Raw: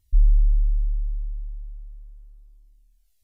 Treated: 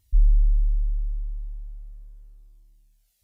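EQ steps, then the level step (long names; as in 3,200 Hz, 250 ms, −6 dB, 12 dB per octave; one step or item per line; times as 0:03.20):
high-pass filter 54 Hz 6 dB per octave
+4.0 dB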